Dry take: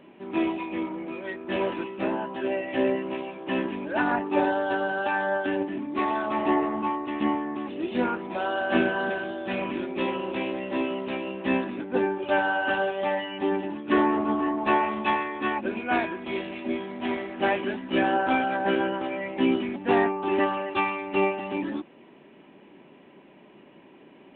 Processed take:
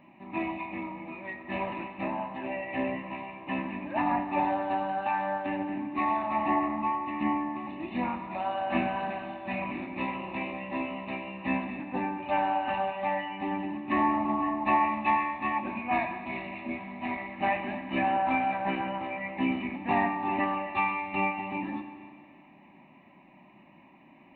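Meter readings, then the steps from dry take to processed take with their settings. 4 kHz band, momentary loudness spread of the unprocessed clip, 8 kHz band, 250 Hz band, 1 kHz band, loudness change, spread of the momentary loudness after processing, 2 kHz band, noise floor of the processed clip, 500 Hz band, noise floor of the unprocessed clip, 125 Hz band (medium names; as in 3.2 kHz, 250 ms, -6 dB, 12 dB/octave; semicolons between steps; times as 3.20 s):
-8.0 dB, 7 LU, no reading, -4.5 dB, -0.5 dB, -3.5 dB, 9 LU, -5.0 dB, -56 dBFS, -9.0 dB, -52 dBFS, -1.5 dB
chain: static phaser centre 2.2 kHz, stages 8; Schroeder reverb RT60 2 s, combs from 30 ms, DRR 7.5 dB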